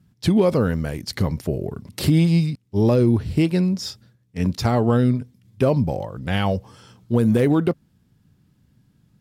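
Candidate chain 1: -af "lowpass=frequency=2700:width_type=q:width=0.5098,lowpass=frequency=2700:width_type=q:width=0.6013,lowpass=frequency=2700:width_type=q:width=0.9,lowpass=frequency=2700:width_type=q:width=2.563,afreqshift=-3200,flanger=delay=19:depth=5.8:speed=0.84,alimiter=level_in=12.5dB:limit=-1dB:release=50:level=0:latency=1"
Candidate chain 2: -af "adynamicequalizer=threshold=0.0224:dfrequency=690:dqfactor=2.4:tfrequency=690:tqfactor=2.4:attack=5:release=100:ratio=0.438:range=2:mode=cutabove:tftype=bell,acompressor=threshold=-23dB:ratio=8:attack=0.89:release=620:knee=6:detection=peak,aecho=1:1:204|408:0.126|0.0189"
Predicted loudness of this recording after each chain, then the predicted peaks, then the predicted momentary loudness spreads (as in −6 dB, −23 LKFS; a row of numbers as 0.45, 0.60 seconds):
−9.0, −31.0 LKFS; −1.0, −14.5 dBFS; 9, 8 LU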